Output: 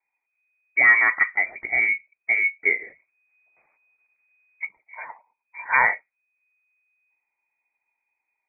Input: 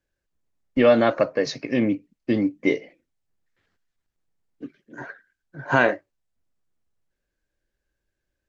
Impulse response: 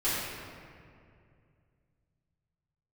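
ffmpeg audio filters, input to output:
-filter_complex "[0:a]lowpass=f=2100:t=q:w=0.5098,lowpass=f=2100:t=q:w=0.6013,lowpass=f=2100:t=q:w=0.9,lowpass=f=2100:t=q:w=2.563,afreqshift=-2500,asettb=1/sr,asplit=3[s0][s1][s2];[s0]atrim=end=2.794[s3];[s1]atrim=start=2.79:end=4.65,asetpts=PTS-STARTPTS,afade=t=in:d=0.004:c=qsin,afade=t=out:st=1.856:d=0.004:c=qsin,acontrast=65[s4];[s2]atrim=start=4.646[s5];[s3][s4]acrossfade=d=0.004:c1=hsin:c2=qsin[s6];[s6][s5]acrossfade=d=0.004:c1=qsin:c2=hsin"

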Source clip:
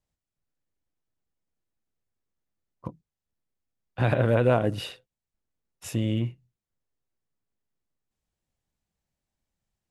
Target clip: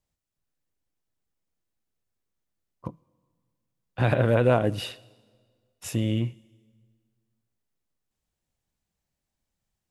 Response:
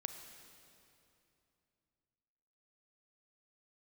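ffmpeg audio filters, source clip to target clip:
-filter_complex "[0:a]asplit=2[s0][s1];[1:a]atrim=start_sample=2205,asetrate=74970,aresample=44100,highshelf=f=2300:g=11.5[s2];[s1][s2]afir=irnorm=-1:irlink=0,volume=0.237[s3];[s0][s3]amix=inputs=2:normalize=0"

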